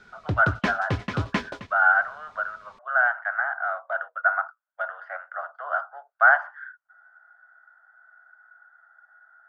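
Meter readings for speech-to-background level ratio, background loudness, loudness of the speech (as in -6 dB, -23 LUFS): 5.5 dB, -30.0 LUFS, -24.5 LUFS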